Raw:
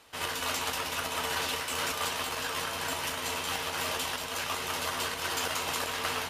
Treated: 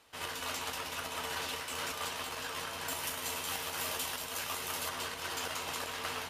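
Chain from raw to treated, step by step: 2.88–4.89 high shelf 8900 Hz +10.5 dB; gain -6 dB

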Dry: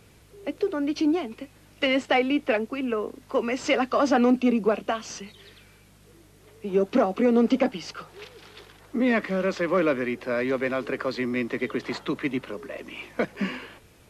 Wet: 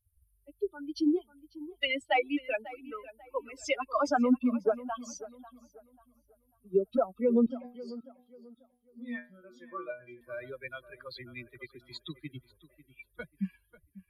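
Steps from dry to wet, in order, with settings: per-bin expansion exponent 3; 7.46–10.21 metallic resonator 120 Hz, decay 0.32 s, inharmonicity 0.002; tape echo 0.542 s, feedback 32%, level -15.5 dB, low-pass 2200 Hz

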